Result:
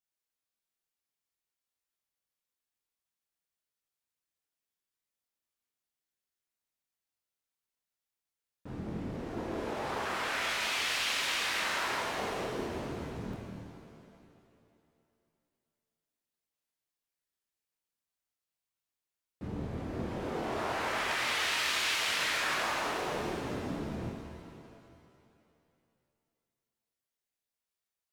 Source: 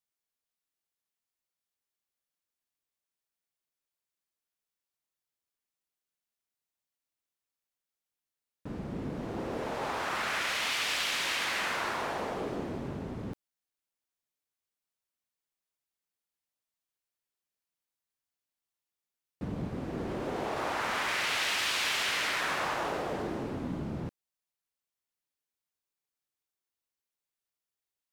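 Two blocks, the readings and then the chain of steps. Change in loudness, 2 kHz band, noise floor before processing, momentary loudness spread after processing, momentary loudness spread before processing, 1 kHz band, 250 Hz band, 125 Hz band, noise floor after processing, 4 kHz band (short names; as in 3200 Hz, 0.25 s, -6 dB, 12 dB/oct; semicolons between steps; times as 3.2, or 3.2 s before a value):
-1.0 dB, -0.5 dB, under -85 dBFS, 14 LU, 12 LU, -1.0 dB, -1.5 dB, -1.0 dB, under -85 dBFS, -0.5 dB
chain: chorus voices 2, 0.45 Hz, delay 25 ms, depth 1.7 ms; shimmer reverb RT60 2.5 s, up +7 st, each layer -8 dB, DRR 2.5 dB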